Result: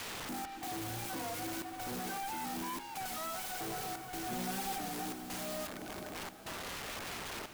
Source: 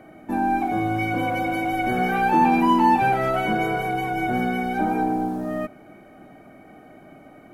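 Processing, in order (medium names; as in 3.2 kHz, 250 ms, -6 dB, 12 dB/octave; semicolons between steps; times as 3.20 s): 1.08–1.76 s: formants flattened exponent 0.6; 3.06–3.61 s: high-pass 950 Hz 12 dB/octave; reverb removal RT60 1.7 s; low-pass 1.5 kHz 24 dB/octave; compression, threshold -23 dBFS, peak gain reduction 8.5 dB; overload inside the chain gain 34.5 dB; trance gate "xxxxx..xxxxxx" 167 bpm -24 dB; integer overflow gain 51.5 dB; 4.31–4.79 s: comb 5.5 ms, depth 83%; echo that smears into a reverb 539 ms, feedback 48%, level -11 dB; warped record 33 1/3 rpm, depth 100 cents; trim +13.5 dB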